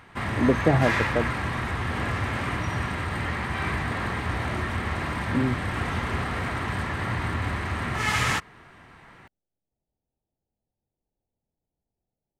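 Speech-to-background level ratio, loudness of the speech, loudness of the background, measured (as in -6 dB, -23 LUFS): 2.0 dB, -26.0 LUFS, -28.0 LUFS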